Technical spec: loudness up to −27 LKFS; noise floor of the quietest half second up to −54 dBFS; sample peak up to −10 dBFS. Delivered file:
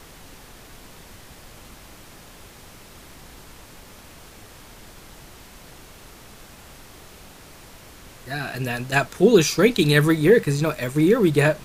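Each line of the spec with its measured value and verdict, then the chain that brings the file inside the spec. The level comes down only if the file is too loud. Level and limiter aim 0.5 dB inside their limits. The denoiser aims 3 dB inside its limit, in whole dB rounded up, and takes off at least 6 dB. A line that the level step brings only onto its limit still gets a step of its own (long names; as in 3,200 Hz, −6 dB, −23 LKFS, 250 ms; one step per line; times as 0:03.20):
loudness −19.0 LKFS: out of spec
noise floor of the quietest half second −45 dBFS: out of spec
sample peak −3.5 dBFS: out of spec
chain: broadband denoise 6 dB, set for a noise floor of −45 dBFS
level −8.5 dB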